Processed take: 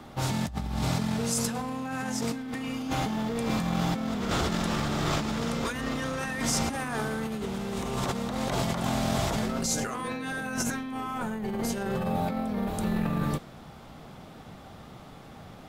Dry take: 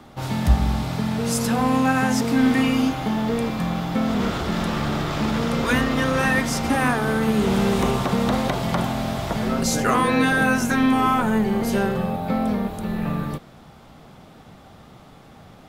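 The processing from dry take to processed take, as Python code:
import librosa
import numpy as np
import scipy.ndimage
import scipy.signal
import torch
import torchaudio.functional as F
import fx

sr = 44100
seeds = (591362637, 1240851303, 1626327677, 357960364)

y = fx.over_compress(x, sr, threshold_db=-26.0, ratio=-1.0)
y = fx.dynamic_eq(y, sr, hz=7200.0, q=0.97, threshold_db=-48.0, ratio=4.0, max_db=7)
y = F.gain(torch.from_numpy(y), -4.5).numpy()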